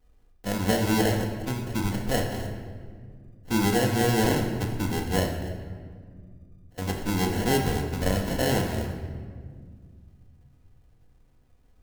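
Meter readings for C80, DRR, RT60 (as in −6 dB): 7.0 dB, −9.0 dB, 1.8 s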